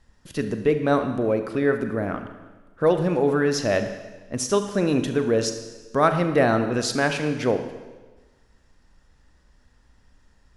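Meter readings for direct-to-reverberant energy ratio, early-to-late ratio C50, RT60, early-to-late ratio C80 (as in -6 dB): 7.5 dB, 9.0 dB, 1.3 s, 10.5 dB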